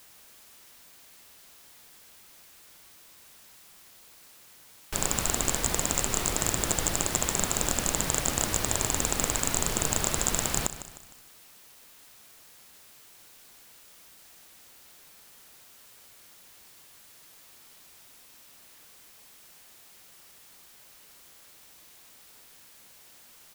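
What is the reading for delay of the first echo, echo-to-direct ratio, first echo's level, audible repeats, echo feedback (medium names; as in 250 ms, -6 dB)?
153 ms, -12.0 dB, -13.0 dB, 4, 44%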